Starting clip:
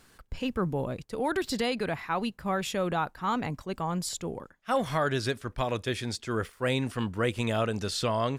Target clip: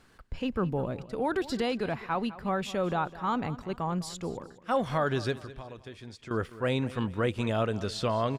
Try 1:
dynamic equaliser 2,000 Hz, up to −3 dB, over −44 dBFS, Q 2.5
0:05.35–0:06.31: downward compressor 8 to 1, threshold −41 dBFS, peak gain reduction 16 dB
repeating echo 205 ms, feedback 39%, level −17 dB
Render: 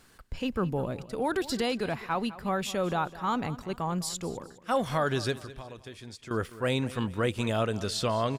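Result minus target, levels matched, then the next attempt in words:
4,000 Hz band +3.0 dB
dynamic equaliser 2,000 Hz, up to −3 dB, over −44 dBFS, Q 2.5
low-pass filter 3,200 Hz 6 dB per octave
0:05.35–0:06.31: downward compressor 8 to 1, threshold −41 dBFS, peak gain reduction 15.5 dB
repeating echo 205 ms, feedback 39%, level −17 dB

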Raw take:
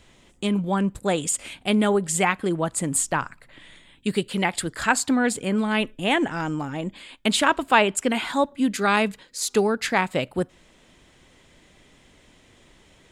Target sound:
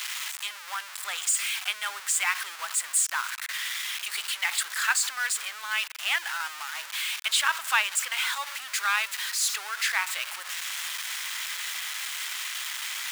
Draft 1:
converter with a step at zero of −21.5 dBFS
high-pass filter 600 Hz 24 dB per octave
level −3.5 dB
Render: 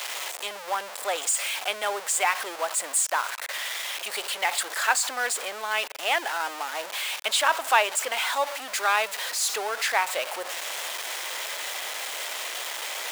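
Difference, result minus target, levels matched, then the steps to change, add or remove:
500 Hz band +19.5 dB
change: high-pass filter 1,200 Hz 24 dB per octave

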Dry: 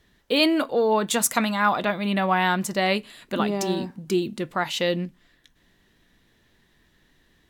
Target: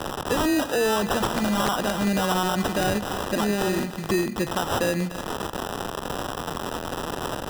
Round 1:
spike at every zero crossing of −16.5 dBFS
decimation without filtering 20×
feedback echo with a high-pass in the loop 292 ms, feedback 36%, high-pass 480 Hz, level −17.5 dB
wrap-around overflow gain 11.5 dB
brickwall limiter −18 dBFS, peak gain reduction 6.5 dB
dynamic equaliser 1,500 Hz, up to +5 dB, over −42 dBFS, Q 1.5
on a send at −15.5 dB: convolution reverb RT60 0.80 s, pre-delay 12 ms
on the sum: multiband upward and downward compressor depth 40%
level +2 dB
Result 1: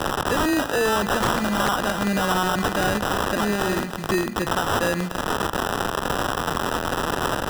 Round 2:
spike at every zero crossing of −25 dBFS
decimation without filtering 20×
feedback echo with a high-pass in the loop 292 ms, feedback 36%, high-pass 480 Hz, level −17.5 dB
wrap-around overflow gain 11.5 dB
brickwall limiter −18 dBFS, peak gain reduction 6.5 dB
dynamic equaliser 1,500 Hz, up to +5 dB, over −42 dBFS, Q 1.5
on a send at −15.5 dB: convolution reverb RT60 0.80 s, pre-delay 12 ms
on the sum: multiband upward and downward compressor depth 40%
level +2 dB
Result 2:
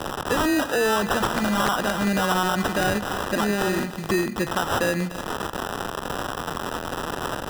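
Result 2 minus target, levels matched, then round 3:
2,000 Hz band +3.0 dB
spike at every zero crossing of −25 dBFS
decimation without filtering 20×
feedback echo with a high-pass in the loop 292 ms, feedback 36%, high-pass 480 Hz, level −17.5 dB
wrap-around overflow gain 11.5 dB
brickwall limiter −18 dBFS, peak gain reduction 6.5 dB
on a send at −15.5 dB: convolution reverb RT60 0.80 s, pre-delay 12 ms
on the sum: multiband upward and downward compressor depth 40%
level +2 dB

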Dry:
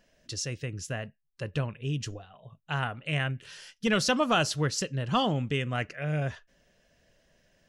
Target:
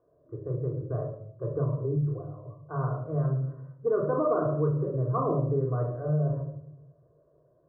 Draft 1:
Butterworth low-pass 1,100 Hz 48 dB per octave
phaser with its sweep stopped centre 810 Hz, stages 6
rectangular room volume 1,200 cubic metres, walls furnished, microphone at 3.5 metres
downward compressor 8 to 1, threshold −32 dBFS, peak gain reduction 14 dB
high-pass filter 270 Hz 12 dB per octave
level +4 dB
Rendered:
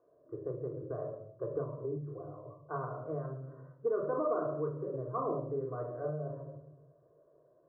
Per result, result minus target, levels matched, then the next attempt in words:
125 Hz band −6.0 dB; downward compressor: peak gain reduction +6 dB
Butterworth low-pass 1,100 Hz 48 dB per octave
phaser with its sweep stopped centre 810 Hz, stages 6
rectangular room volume 1,200 cubic metres, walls furnished, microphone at 3.5 metres
downward compressor 8 to 1, threshold −32 dBFS, peak gain reduction 14 dB
high-pass filter 130 Hz 12 dB per octave
level +4 dB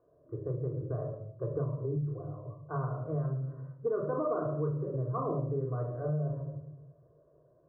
downward compressor: peak gain reduction +6 dB
Butterworth low-pass 1,100 Hz 48 dB per octave
phaser with its sweep stopped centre 810 Hz, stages 6
rectangular room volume 1,200 cubic metres, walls furnished, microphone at 3.5 metres
downward compressor 8 to 1, threshold −25 dBFS, peak gain reduction 8 dB
high-pass filter 130 Hz 12 dB per octave
level +4 dB

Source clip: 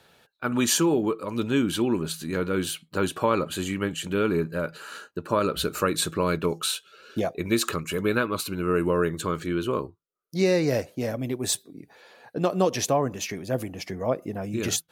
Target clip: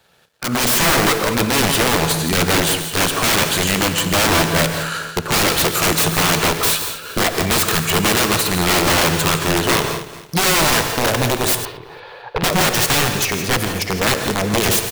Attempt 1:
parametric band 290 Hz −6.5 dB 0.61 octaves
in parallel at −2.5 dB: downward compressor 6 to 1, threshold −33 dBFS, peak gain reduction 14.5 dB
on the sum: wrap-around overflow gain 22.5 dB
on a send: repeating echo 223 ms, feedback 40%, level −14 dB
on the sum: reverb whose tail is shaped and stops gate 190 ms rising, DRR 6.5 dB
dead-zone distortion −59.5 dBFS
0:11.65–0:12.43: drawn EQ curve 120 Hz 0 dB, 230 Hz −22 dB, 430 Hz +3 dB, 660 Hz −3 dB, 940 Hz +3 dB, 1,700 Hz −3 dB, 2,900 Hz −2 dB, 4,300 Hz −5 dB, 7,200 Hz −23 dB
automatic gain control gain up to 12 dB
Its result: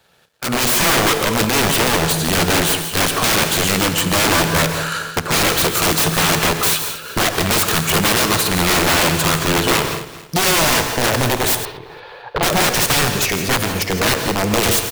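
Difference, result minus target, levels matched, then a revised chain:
downward compressor: peak gain reduction −6 dB
parametric band 290 Hz −6.5 dB 0.61 octaves
in parallel at −2.5 dB: downward compressor 6 to 1, threshold −40.5 dBFS, peak gain reduction 20.5 dB
on the sum: wrap-around overflow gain 22.5 dB
on a send: repeating echo 223 ms, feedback 40%, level −14 dB
on the sum: reverb whose tail is shaped and stops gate 190 ms rising, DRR 6.5 dB
dead-zone distortion −59.5 dBFS
0:11.65–0:12.43: drawn EQ curve 120 Hz 0 dB, 230 Hz −22 dB, 430 Hz +3 dB, 660 Hz −3 dB, 940 Hz +3 dB, 1,700 Hz −3 dB, 2,900 Hz −2 dB, 4,300 Hz −5 dB, 7,200 Hz −23 dB
automatic gain control gain up to 12 dB

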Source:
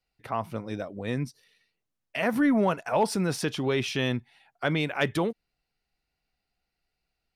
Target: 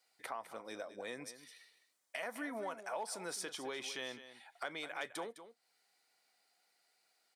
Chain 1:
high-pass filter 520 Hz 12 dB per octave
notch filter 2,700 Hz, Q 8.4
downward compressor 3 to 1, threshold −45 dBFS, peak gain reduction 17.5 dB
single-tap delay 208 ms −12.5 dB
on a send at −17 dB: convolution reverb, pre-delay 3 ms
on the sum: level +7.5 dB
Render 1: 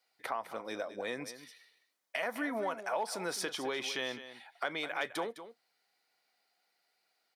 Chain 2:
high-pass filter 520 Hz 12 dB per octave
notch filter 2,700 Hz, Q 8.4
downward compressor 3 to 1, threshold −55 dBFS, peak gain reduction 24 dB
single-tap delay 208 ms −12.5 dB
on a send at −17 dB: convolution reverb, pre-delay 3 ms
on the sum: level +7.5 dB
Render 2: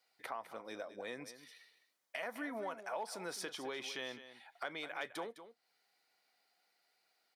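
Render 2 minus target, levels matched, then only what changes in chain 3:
8,000 Hz band −4.0 dB
add after high-pass filter: parametric band 8,300 Hz +8 dB 0.83 octaves

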